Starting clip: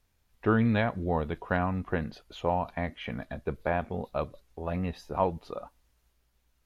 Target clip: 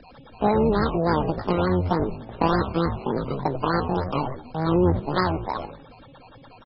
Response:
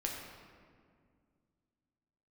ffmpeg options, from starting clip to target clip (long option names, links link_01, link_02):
-filter_complex "[0:a]acrossover=split=83|630|1500|4100[link_01][link_02][link_03][link_04][link_05];[link_01]acompressor=threshold=-50dB:ratio=4[link_06];[link_02]acompressor=threshold=-31dB:ratio=4[link_07];[link_03]acompressor=threshold=-34dB:ratio=4[link_08];[link_04]acompressor=threshold=-47dB:ratio=4[link_09];[link_05]acompressor=threshold=-59dB:ratio=4[link_10];[link_06][link_07][link_08][link_09][link_10]amix=inputs=5:normalize=0,tiltshelf=frequency=970:gain=8.5,bandreject=frequency=4000:width=6,aeval=exprs='val(0)+0.00141*sin(2*PI*3100*n/s)':channel_layout=same,aemphasis=mode=production:type=75fm,aphaser=in_gain=1:out_gain=1:delay=4.1:decay=0.24:speed=0.41:type=triangular,asplit=2[link_11][link_12];[link_12]asplit=4[link_13][link_14][link_15][link_16];[link_13]adelay=83,afreqshift=-140,volume=-6.5dB[link_17];[link_14]adelay=166,afreqshift=-280,volume=-16.4dB[link_18];[link_15]adelay=249,afreqshift=-420,volume=-26.3dB[link_19];[link_16]adelay=332,afreqshift=-560,volume=-36.2dB[link_20];[link_17][link_18][link_19][link_20]amix=inputs=4:normalize=0[link_21];[link_11][link_21]amix=inputs=2:normalize=0,asetrate=85689,aresample=44100,atempo=0.514651,acrossover=split=1200[link_22][link_23];[link_23]acrusher=samples=20:mix=1:aa=0.000001:lfo=1:lforange=12:lforate=3.4[link_24];[link_22][link_24]amix=inputs=2:normalize=0,volume=6.5dB" -ar 22050 -c:a libmp3lame -b:a 16k